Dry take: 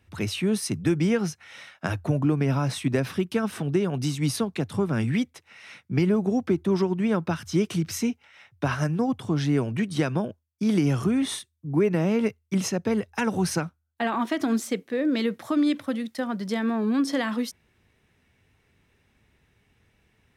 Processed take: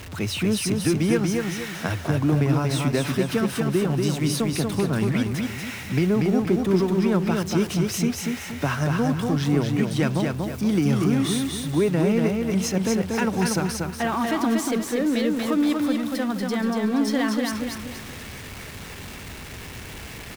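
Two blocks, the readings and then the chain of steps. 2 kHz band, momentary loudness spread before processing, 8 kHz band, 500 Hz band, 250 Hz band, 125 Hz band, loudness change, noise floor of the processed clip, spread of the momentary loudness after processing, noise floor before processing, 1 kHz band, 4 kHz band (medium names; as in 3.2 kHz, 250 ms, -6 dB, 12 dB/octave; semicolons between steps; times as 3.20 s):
+3.5 dB, 7 LU, +5.0 dB, +2.5 dB, +3.0 dB, +3.5 dB, +2.5 dB, -38 dBFS, 15 LU, -69 dBFS, +3.0 dB, +4.5 dB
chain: jump at every zero crossing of -33.5 dBFS; on a send: feedback delay 237 ms, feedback 39%, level -3.5 dB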